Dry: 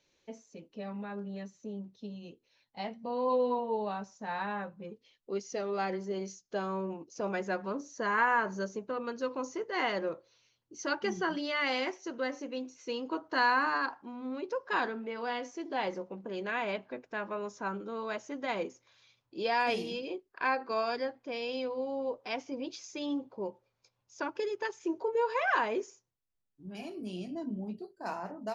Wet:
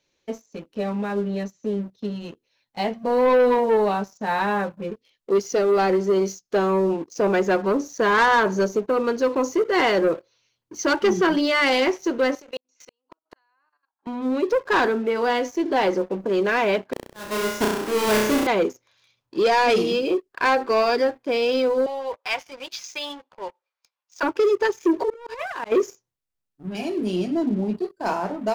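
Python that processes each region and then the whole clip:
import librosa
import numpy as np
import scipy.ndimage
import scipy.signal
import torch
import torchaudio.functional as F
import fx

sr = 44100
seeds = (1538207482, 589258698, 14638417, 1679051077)

y = fx.chain(x, sr, fx.highpass(hz=550.0, slope=12),
    fx.gate_flip(shuts_db=-32.0, range_db=-39),
    fx.level_steps(step_db=14), at=(12.35, 14.07))
y = fx.chain(y, sr, fx.halfwave_hold(),
    fx.auto_swell(attack_ms=513.0),
    fx.room_flutter(wall_m=5.6, rt60_s=0.76), at=(16.93, 18.47))
y = fx.chain(y, sr, fx.highpass(hz=1100.0, slope=12),
    fx.leveller(passes=1),
    fx.high_shelf(hz=5100.0, db=-9.0), at=(21.86, 24.23))
y = fx.chain(y, sr, fx.over_compress(threshold_db=-35.0, ratio=-0.5),
    fx.auto_swell(attack_ms=277.0), at=(24.99, 25.72))
y = fx.dynamic_eq(y, sr, hz=390.0, q=1.7, threshold_db=-47.0, ratio=4.0, max_db=6)
y = fx.leveller(y, sr, passes=2)
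y = F.gain(torch.from_numpy(y), 5.0).numpy()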